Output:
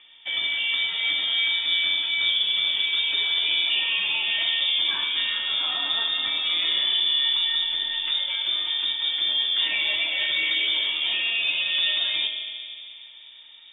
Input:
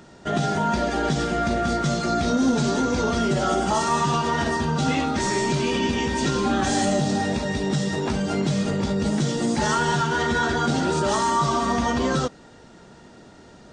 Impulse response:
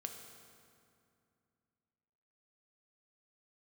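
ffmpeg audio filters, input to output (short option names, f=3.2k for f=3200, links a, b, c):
-filter_complex "[0:a]asubboost=boost=4:cutoff=81[a];[1:a]atrim=start_sample=2205[b];[a][b]afir=irnorm=-1:irlink=0,lowpass=f=3.1k:t=q:w=0.5098,lowpass=f=3.1k:t=q:w=0.6013,lowpass=f=3.1k:t=q:w=0.9,lowpass=f=3.1k:t=q:w=2.563,afreqshift=-3700" -ar 32000 -c:a libmp3lame -b:a 48k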